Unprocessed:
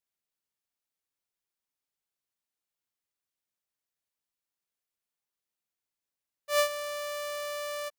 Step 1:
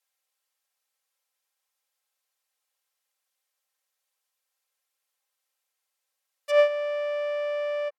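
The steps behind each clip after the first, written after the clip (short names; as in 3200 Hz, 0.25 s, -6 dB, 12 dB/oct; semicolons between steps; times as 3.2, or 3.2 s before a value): HPF 490 Hz 24 dB/oct; treble ducked by the level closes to 1500 Hz, closed at -35 dBFS; comb 3.8 ms, depth 71%; gain +7.5 dB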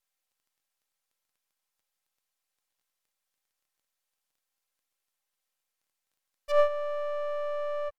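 half-wave gain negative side -12 dB; crackle 11/s -61 dBFS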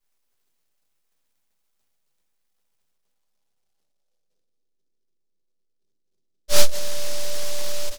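reverb RT60 0.50 s, pre-delay 5 ms, DRR -8 dB; low-pass sweep 4100 Hz -> 370 Hz, 1.71–4.76; noise-modulated delay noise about 4800 Hz, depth 0.27 ms; gain -1.5 dB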